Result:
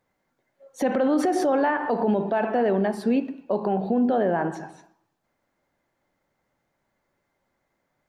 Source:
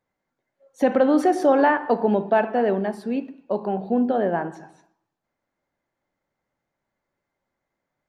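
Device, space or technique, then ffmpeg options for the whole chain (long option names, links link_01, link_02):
stacked limiters: -af "alimiter=limit=-13dB:level=0:latency=1:release=69,alimiter=limit=-16dB:level=0:latency=1:release=26,alimiter=limit=-20.5dB:level=0:latency=1:release=123,volume=6dB"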